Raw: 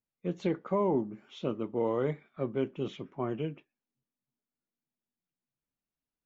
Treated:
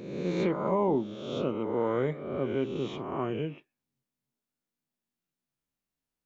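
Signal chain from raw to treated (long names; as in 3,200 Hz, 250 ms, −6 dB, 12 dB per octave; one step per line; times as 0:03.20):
peak hold with a rise ahead of every peak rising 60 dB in 1.15 s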